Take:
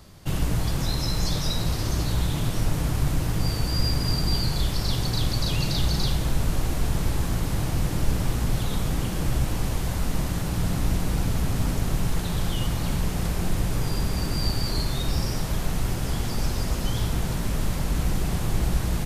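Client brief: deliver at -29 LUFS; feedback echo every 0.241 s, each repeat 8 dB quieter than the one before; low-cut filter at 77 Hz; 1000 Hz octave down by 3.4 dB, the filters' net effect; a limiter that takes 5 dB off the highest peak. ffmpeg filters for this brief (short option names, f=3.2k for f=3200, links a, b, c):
-af "highpass=77,equalizer=f=1k:t=o:g=-4.5,alimiter=limit=-19dB:level=0:latency=1,aecho=1:1:241|482|723|964|1205:0.398|0.159|0.0637|0.0255|0.0102,volume=-0.5dB"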